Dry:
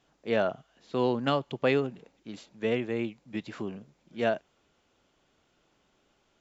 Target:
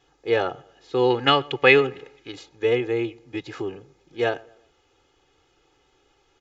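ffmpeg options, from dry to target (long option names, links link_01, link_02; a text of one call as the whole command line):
ffmpeg -i in.wav -filter_complex "[0:a]aecho=1:1:2.4:0.92,asplit=2[link_01][link_02];[link_02]adelay=119,lowpass=frequency=2000:poles=1,volume=-23dB,asplit=2[link_03][link_04];[link_04]adelay=119,lowpass=frequency=2000:poles=1,volume=0.42,asplit=2[link_05][link_06];[link_06]adelay=119,lowpass=frequency=2000:poles=1,volume=0.42[link_07];[link_01][link_03][link_05][link_07]amix=inputs=4:normalize=0,aresample=16000,aresample=44100,asettb=1/sr,asplit=3[link_08][link_09][link_10];[link_08]atrim=end=1.104[link_11];[link_09]atrim=start=1.1:end=2.32,asetpts=PTS-STARTPTS,afade=type=in:duration=0.004:curve=qsin,afade=type=out:start_time=1.216:duration=0.004:curve=qsin,equalizer=frequency=2200:width=0.78:gain=10.5[link_12];[link_10]atrim=start=2.316[link_13];[link_11][link_12]acrossfade=duration=0.004:curve1=hsin:curve2=qsin[link_14];[link_14][link_13]acrossfade=duration=0.004:curve1=qsin:curve2=hsin,volume=3.5dB" out.wav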